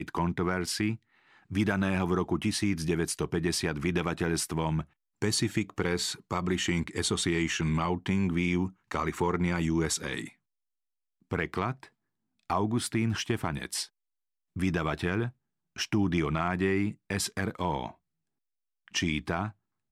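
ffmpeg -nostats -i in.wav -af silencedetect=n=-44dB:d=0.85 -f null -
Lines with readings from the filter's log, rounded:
silence_start: 10.30
silence_end: 11.31 | silence_duration: 1.02
silence_start: 17.91
silence_end: 18.88 | silence_duration: 0.96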